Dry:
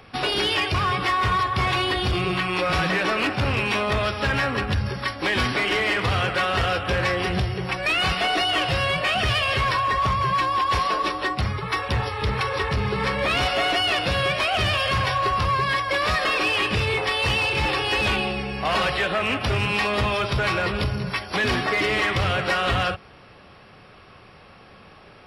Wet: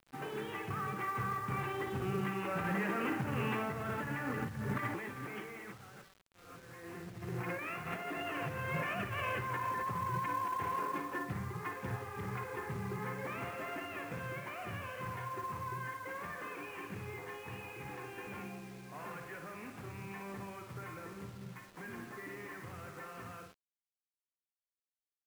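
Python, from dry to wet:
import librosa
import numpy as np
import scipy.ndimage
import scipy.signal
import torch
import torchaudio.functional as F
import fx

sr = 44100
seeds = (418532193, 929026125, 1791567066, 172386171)

y = fx.doppler_pass(x, sr, speed_mps=18, closest_m=1.8, pass_at_s=6.21)
y = scipy.signal.sosfilt(scipy.signal.butter(4, 2100.0, 'lowpass', fs=sr, output='sos'), y)
y = fx.room_flutter(y, sr, wall_m=9.6, rt60_s=0.44)
y = fx.over_compress(y, sr, threshold_db=-54.0, ratio=-1.0)
y = scipy.signal.sosfilt(scipy.signal.butter(4, 120.0, 'highpass', fs=sr, output='sos'), y)
y = fx.peak_eq(y, sr, hz=620.0, db=-7.0, octaves=0.35)
y = fx.quant_companded(y, sr, bits=6)
y = fx.low_shelf(y, sr, hz=320.0, db=6.0)
y = y * librosa.db_to_amplitude(10.0)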